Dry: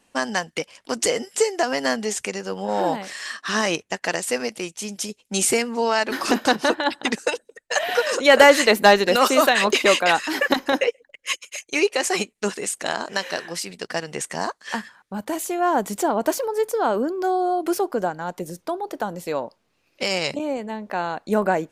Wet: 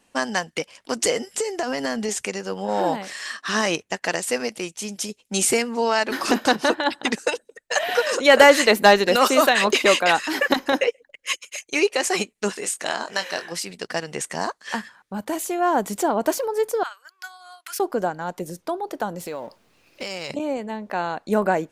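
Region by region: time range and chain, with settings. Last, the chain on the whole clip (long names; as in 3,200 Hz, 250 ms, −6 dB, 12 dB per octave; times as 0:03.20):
0:01.28–0:02.09: low-shelf EQ 130 Hz +11 dB + downward compressor 10 to 1, threshold −20 dBFS
0:12.52–0:13.52: low-shelf EQ 450 Hz −5 dB + double-tracking delay 22 ms −8.5 dB
0:16.83–0:17.80: high-pass filter 1,400 Hz 24 dB per octave + transient designer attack +2 dB, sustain −10 dB
0:19.20–0:20.30: mu-law and A-law mismatch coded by mu + downward compressor 3 to 1, threshold −29 dBFS
whole clip: no processing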